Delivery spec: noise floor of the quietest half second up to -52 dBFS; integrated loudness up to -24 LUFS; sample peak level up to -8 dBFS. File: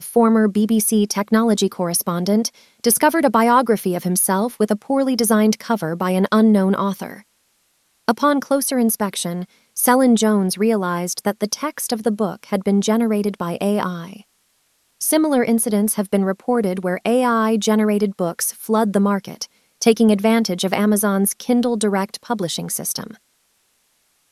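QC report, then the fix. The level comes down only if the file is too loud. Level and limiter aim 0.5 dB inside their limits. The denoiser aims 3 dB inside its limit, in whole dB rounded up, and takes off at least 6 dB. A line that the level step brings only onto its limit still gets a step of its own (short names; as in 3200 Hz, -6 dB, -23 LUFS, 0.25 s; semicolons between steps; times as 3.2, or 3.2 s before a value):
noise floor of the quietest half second -64 dBFS: OK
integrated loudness -18.5 LUFS: fail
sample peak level -2.0 dBFS: fail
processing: gain -6 dB; limiter -8.5 dBFS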